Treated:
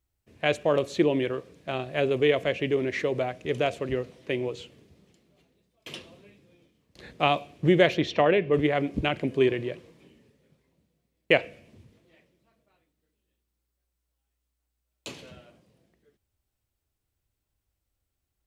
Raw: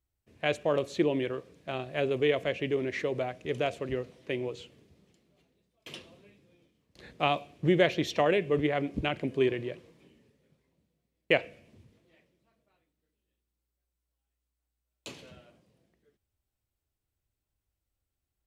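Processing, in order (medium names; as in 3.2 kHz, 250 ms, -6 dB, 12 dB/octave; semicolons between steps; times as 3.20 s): 7.97–8.52 s: low-pass 4.6 kHz -> 2.9 kHz 12 dB/octave; trim +4 dB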